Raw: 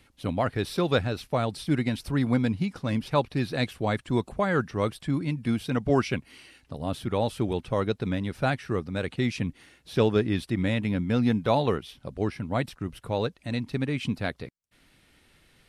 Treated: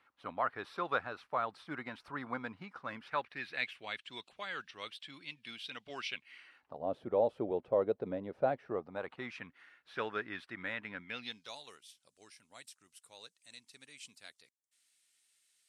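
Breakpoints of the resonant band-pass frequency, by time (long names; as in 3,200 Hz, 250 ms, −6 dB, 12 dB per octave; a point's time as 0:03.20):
resonant band-pass, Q 2.2
0:02.79 1,200 Hz
0:04.09 3,200 Hz
0:06.14 3,200 Hz
0:06.89 560 Hz
0:08.61 560 Hz
0:09.45 1,500 Hz
0:10.95 1,500 Hz
0:11.59 7,800 Hz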